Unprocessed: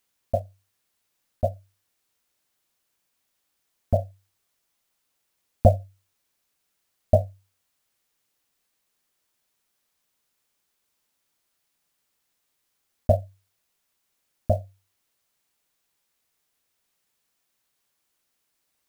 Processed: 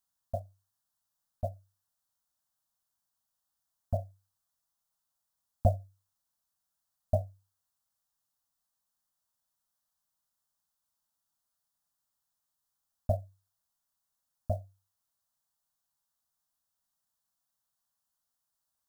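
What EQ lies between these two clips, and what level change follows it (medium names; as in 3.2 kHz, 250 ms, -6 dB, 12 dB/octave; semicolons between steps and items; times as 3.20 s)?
static phaser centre 970 Hz, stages 4; -7.5 dB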